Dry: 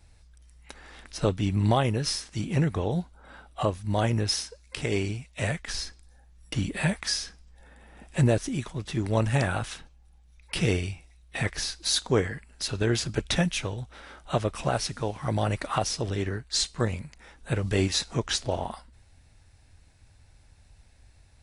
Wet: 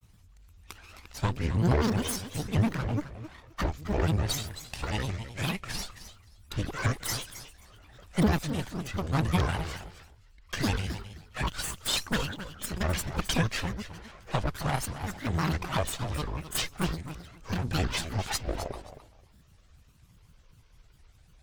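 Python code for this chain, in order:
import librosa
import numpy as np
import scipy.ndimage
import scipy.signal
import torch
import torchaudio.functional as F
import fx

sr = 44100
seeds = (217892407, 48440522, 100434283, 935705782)

p1 = fx.lower_of_two(x, sr, delay_ms=1.1)
p2 = fx.granulator(p1, sr, seeds[0], grain_ms=100.0, per_s=20.0, spray_ms=13.0, spread_st=12)
p3 = p2 + fx.echo_feedback(p2, sr, ms=265, feedback_pct=17, wet_db=-12, dry=0)
y = fx.vibrato_shape(p3, sr, shape='saw_up', rate_hz=5.1, depth_cents=160.0)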